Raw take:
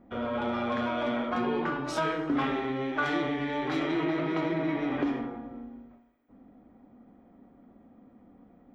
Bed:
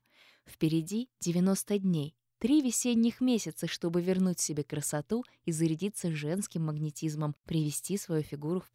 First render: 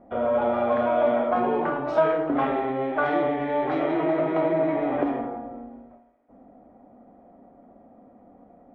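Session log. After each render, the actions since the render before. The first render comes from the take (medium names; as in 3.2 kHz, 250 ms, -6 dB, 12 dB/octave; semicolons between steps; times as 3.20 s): low-pass 2.5 kHz 12 dB/octave; peaking EQ 650 Hz +13 dB 0.99 oct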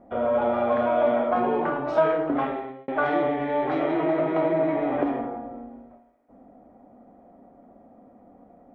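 2.30–2.88 s: fade out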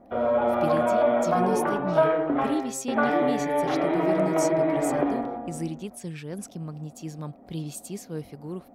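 add bed -3 dB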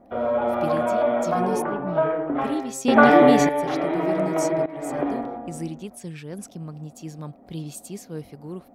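1.62–2.35 s: distance through air 380 m; 2.85–3.49 s: gain +9.5 dB; 4.66–5.07 s: fade in, from -17 dB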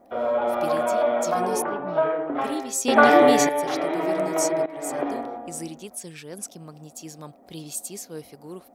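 tone controls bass -10 dB, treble +8 dB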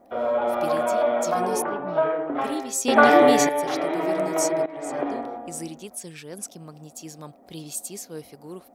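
4.69–5.25 s: distance through air 62 m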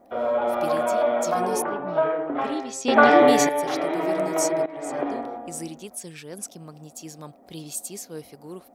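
2.33–3.28 s: low-pass 5.3 kHz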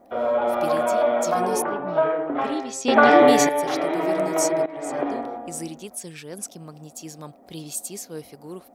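trim +1.5 dB; peak limiter -3 dBFS, peak gain reduction 2.5 dB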